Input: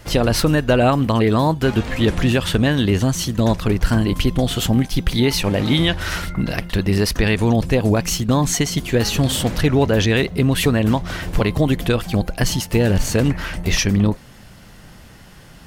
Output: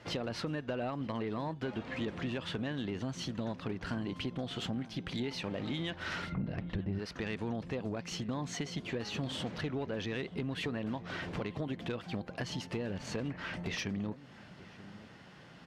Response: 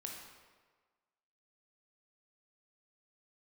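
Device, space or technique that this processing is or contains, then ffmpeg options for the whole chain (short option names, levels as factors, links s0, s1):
AM radio: -filter_complex "[0:a]asettb=1/sr,asplit=3[s0][s1][s2];[s0]atrim=end=6.324[s3];[s1]atrim=start=6.32:end=6.99,asetpts=PTS-STARTPTS,afade=t=in:d=0.004:c=qsin,afade=t=out:st=0.666:d=0.004:c=qsin,aemphasis=mode=reproduction:type=riaa[s4];[s2]atrim=start=6.986[s5];[s3][s4]acrossfade=d=0.004:c1=hsin:c2=qsin[s6];[s6][s5]acrossfade=d=0.004:c1=qsin:c2=hsin,highpass=140,lowpass=4000,acompressor=threshold=0.0501:ratio=4,asoftclip=type=tanh:threshold=0.126,asplit=2[s7][s8];[s8]adelay=932.9,volume=0.141,highshelf=f=4000:g=-21[s9];[s7][s9]amix=inputs=2:normalize=0,volume=0.398"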